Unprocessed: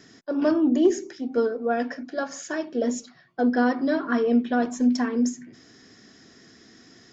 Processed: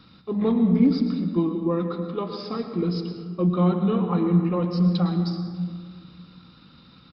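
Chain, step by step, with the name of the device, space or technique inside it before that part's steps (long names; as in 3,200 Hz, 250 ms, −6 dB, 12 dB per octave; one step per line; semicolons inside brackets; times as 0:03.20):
monster voice (pitch shifter −5.5 semitones; low-shelf EQ 100 Hz +9 dB; convolution reverb RT60 1.8 s, pre-delay 99 ms, DRR 6.5 dB)
level −1.5 dB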